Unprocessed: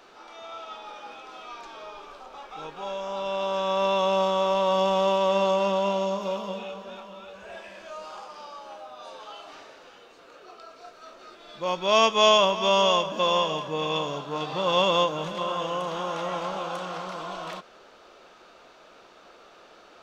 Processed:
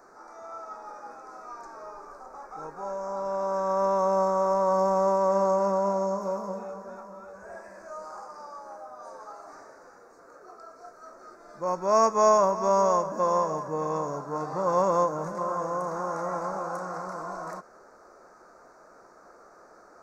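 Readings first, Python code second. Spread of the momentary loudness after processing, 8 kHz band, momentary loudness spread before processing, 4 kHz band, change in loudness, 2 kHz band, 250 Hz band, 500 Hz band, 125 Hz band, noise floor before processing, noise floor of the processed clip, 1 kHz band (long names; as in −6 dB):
21 LU, can't be measured, 21 LU, −21.5 dB, −1.5 dB, −10.0 dB, −1.0 dB, −0.5 dB, −1.0 dB, −53 dBFS, −54 dBFS, 0.0 dB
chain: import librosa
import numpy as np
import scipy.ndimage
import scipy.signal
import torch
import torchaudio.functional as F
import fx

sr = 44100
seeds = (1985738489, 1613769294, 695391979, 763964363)

y = scipy.signal.sosfilt(scipy.signal.cheby1(2, 1.0, [1500.0, 6200.0], 'bandstop', fs=sr, output='sos'), x)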